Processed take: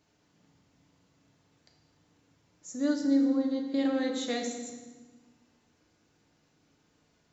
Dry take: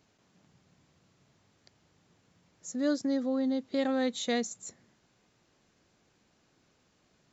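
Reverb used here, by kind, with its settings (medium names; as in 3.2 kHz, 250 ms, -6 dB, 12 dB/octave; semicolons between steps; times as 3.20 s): FDN reverb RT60 1.3 s, low-frequency decay 1.45×, high-frequency decay 0.85×, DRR 1 dB; trim -3.5 dB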